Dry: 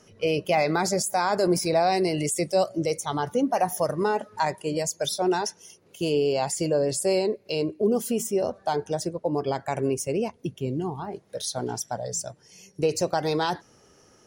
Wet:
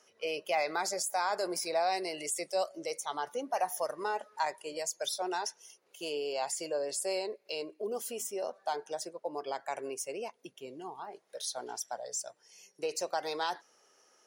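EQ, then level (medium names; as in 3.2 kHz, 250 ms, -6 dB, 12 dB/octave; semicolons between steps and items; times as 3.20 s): high-pass 580 Hz 12 dB/octave; -6.0 dB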